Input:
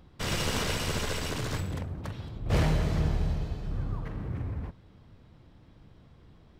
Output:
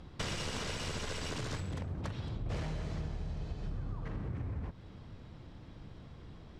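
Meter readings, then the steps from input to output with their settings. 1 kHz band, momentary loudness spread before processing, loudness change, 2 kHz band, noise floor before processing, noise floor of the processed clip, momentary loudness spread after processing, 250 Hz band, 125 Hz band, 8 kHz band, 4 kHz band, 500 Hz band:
-8.0 dB, 11 LU, -8.0 dB, -7.5 dB, -57 dBFS, -52 dBFS, 14 LU, -8.0 dB, -7.5 dB, -7.5 dB, -7.0 dB, -8.0 dB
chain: Chebyshev low-pass 7.3 kHz, order 2; compression 12:1, threshold -40 dBFS, peak gain reduction 18 dB; trim +5.5 dB

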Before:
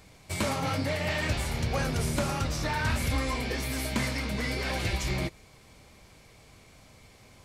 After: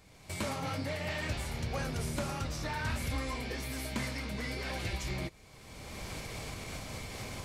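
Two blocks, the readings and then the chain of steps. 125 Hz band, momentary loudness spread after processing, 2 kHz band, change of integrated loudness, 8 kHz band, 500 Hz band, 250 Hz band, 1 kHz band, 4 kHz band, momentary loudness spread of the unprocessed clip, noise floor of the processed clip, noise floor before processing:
-6.0 dB, 7 LU, -6.0 dB, -7.0 dB, -5.5 dB, -6.0 dB, -6.0 dB, -6.0 dB, -6.0 dB, 3 LU, -56 dBFS, -56 dBFS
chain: recorder AGC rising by 26 dB/s; trim -6.5 dB

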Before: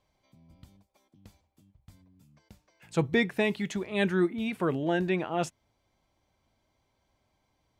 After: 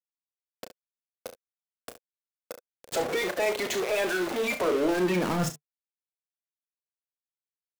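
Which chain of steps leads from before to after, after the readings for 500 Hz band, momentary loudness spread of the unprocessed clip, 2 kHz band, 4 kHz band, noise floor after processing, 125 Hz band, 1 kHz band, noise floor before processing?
+3.0 dB, 7 LU, +2.0 dB, +4.0 dB, under -85 dBFS, -2.5 dB, +3.5 dB, -76 dBFS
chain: coarse spectral quantiser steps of 30 dB; in parallel at -2.5 dB: compression, threshold -38 dBFS, peak gain reduction 16 dB; on the sum: peak limiter -25 dBFS, peak gain reduction 12 dB; small samples zeroed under -40 dBFS; high-pass sweep 520 Hz -> 150 Hz, 4.54–5.47 s; power-law waveshaper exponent 0.5; on a send: early reflections 33 ms -8.5 dB, 69 ms -12 dB

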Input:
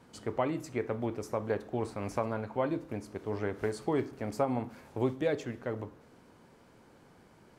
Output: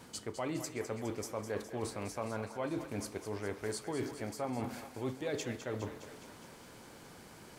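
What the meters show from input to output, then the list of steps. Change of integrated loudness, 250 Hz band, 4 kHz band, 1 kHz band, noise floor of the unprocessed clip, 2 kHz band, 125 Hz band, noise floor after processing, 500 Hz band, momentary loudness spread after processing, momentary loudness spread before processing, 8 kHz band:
-5.0 dB, -4.5 dB, +4.0 dB, -5.5 dB, -60 dBFS, -2.0 dB, -4.5 dB, -54 dBFS, -6.0 dB, 15 LU, 7 LU, +7.5 dB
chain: treble shelf 3.1 kHz +11 dB; reverse; compression, threshold -39 dBFS, peak gain reduction 15 dB; reverse; thinning echo 206 ms, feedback 70%, high-pass 460 Hz, level -9.5 dB; trim +4 dB

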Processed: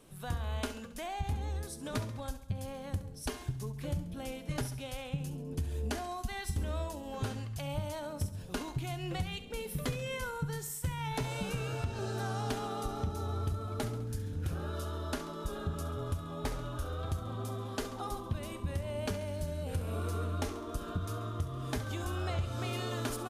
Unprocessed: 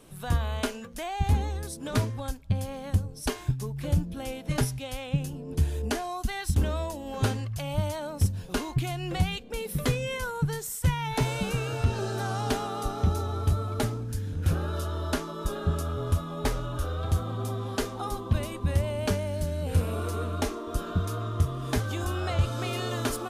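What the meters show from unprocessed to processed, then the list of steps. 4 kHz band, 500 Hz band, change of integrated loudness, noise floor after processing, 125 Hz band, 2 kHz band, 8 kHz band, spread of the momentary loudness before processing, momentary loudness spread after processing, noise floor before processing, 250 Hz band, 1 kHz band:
-6.5 dB, -6.5 dB, -7.5 dB, -46 dBFS, -8.0 dB, -6.5 dB, -6.5 dB, 5 LU, 4 LU, -41 dBFS, -7.0 dB, -6.5 dB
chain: compression, threshold -25 dBFS, peak gain reduction 7.5 dB; on a send: feedback delay 68 ms, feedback 57%, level -13 dB; on the sum: trim -5.5 dB

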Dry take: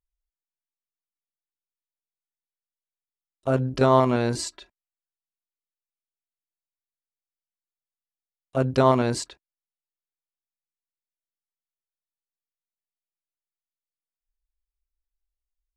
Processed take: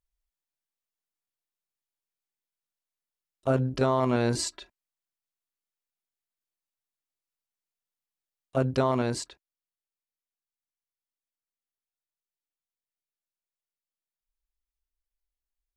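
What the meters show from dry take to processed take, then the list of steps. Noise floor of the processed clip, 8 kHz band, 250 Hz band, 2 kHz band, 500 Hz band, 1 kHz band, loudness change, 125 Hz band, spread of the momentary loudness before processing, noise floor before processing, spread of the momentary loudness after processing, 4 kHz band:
under -85 dBFS, -1.0 dB, -3.5 dB, -3.5 dB, -5.0 dB, -6.5 dB, -4.5 dB, -3.5 dB, 14 LU, under -85 dBFS, 9 LU, -2.0 dB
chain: gain riding within 3 dB 0.5 s; peak limiter -12.5 dBFS, peak gain reduction 5 dB; trim -1.5 dB

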